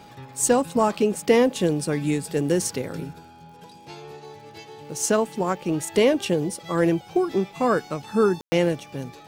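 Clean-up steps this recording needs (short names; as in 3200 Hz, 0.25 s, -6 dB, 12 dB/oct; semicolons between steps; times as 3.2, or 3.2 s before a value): de-click; notch 830 Hz, Q 30; room tone fill 8.41–8.52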